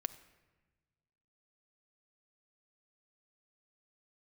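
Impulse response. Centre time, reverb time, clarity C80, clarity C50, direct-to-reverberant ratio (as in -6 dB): 6 ms, 1.2 s, 16.5 dB, 14.5 dB, 10.0 dB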